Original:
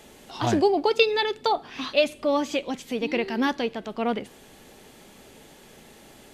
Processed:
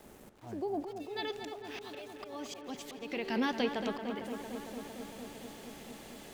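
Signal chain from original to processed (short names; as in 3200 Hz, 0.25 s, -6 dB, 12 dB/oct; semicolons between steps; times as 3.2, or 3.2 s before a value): bell 4000 Hz -14.5 dB 2.3 oct, from 0.88 s +2 dB; compressor 5:1, threshold -26 dBFS, peak gain reduction 12 dB; auto swell 0.459 s; sample gate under -52.5 dBFS; darkening echo 0.227 s, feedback 83%, low-pass 3200 Hz, level -8 dB; gain -2 dB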